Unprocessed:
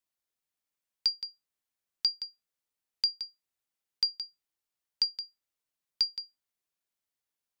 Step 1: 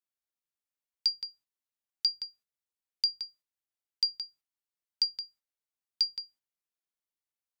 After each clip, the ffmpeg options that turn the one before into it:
-af "bandreject=f=50:t=h:w=6,bandreject=f=100:t=h:w=6,bandreject=f=150:t=h:w=6,agate=range=-8dB:threshold=-59dB:ratio=16:detection=peak"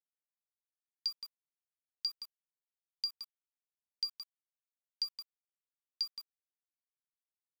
-af "aeval=exprs='val(0)*gte(abs(val(0)),0.0106)':c=same,volume=-8dB"

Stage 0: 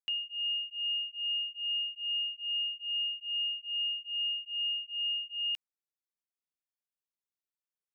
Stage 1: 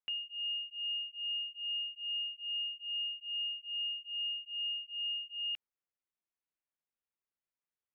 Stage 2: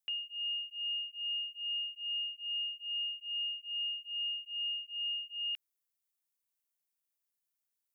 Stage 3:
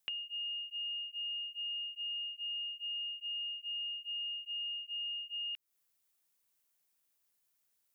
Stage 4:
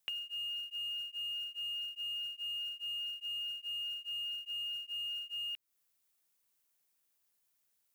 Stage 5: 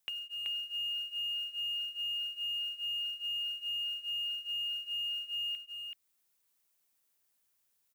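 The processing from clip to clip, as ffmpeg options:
-af "lowpass=f=2.7k:w=0.5412,lowpass=f=2.7k:w=1.3066"
-af "crystalizer=i=3.5:c=0,volume=-5dB"
-af "acompressor=threshold=-47dB:ratio=6,volume=8dB"
-af "acrusher=bits=5:mode=log:mix=0:aa=0.000001"
-af "aecho=1:1:380:0.668"

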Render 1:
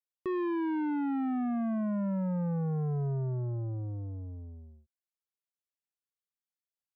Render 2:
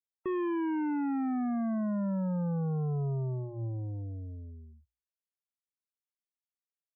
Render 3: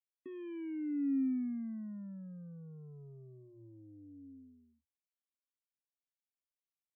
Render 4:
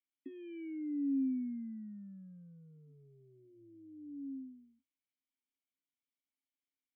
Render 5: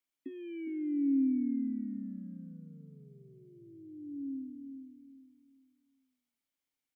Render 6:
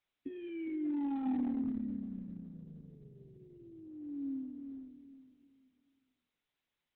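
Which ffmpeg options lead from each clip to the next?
-af "afftfilt=real='re*gte(hypot(re,im),0.00316)':imag='im*gte(hypot(re,im),0.00316)':win_size=1024:overlap=0.75,bandreject=f=60:t=h:w=6,bandreject=f=120:t=h:w=6"
-filter_complex "[0:a]asplit=3[a][b][c];[a]bandpass=f=270:t=q:w=8,volume=0dB[d];[b]bandpass=f=2.29k:t=q:w=8,volume=-6dB[e];[c]bandpass=f=3.01k:t=q:w=8,volume=-9dB[f];[d][e][f]amix=inputs=3:normalize=0,equalizer=f=1k:w=5.6:g=10.5"
-filter_complex "[0:a]acompressor=threshold=-43dB:ratio=5,asplit=3[a][b][c];[a]bandpass=f=270:t=q:w=8,volume=0dB[d];[b]bandpass=f=2.29k:t=q:w=8,volume=-6dB[e];[c]bandpass=f=3.01k:t=q:w=8,volume=-9dB[f];[d][e][f]amix=inputs=3:normalize=0,volume=11dB"
-filter_complex "[0:a]asplit=2[a][b];[b]adelay=409,lowpass=f=850:p=1,volume=-7dB,asplit=2[c][d];[d]adelay=409,lowpass=f=850:p=1,volume=0.34,asplit=2[e][f];[f]adelay=409,lowpass=f=850:p=1,volume=0.34,asplit=2[g][h];[h]adelay=409,lowpass=f=850:p=1,volume=0.34[i];[a][c][e][g][i]amix=inputs=5:normalize=0,volume=4.5dB"
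-af "volume=30dB,asoftclip=hard,volume=-30dB" -ar 48000 -c:a libopus -b:a 6k

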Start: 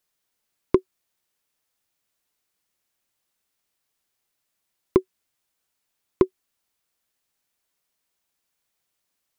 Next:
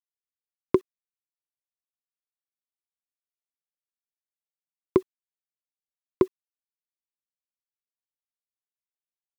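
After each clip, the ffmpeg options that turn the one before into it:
-af "highpass=84,acrusher=bits=8:mix=0:aa=0.000001,volume=-2dB"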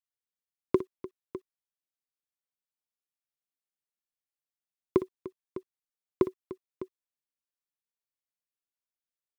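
-af "aecho=1:1:59|298|604:0.2|0.15|0.188,volume=-4dB"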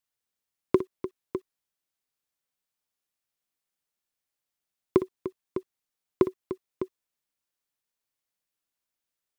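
-af "alimiter=limit=-13dB:level=0:latency=1:release=230,volume=7dB"

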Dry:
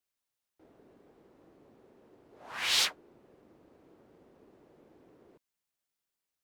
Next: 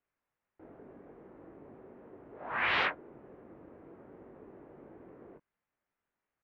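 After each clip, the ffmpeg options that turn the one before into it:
-filter_complex "[0:a]lowpass=f=2.1k:w=0.5412,lowpass=f=2.1k:w=1.3066,asplit=2[a][b];[b]adelay=21,volume=-8dB[c];[a][c]amix=inputs=2:normalize=0,volume=7dB"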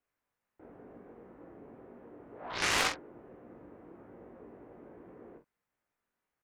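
-af "aeval=exprs='0.141*(cos(1*acos(clip(val(0)/0.141,-1,1)))-cos(1*PI/2))+0.0398*(cos(7*acos(clip(val(0)/0.141,-1,1)))-cos(7*PI/2))':c=same,aecho=1:1:17|47:0.422|0.398"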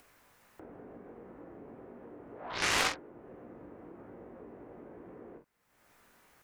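-af "acompressor=mode=upward:threshold=-44dB:ratio=2.5"

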